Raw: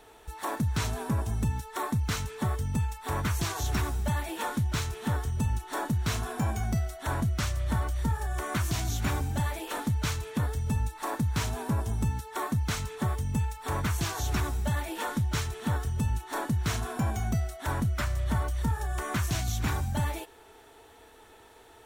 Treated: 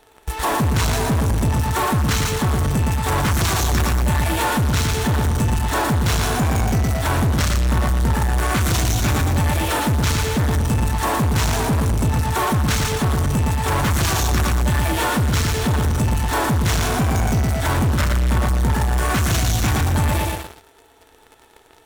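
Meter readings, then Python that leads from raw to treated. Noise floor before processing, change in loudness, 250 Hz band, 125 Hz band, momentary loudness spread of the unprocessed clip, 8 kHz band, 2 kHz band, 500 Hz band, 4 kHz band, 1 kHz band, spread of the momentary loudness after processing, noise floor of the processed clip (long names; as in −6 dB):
−54 dBFS, +11.5 dB, +11.0 dB, +10.5 dB, 3 LU, +12.5 dB, +12.5 dB, +13.0 dB, +13.0 dB, +12.0 dB, 1 LU, −51 dBFS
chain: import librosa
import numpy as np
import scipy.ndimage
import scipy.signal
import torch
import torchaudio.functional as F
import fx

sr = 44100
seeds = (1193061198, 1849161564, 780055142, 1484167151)

p1 = fx.echo_feedback(x, sr, ms=115, feedback_pct=41, wet_db=-5)
p2 = fx.fuzz(p1, sr, gain_db=39.0, gate_db=-45.0)
y = p1 + F.gain(torch.from_numpy(p2), -6.5).numpy()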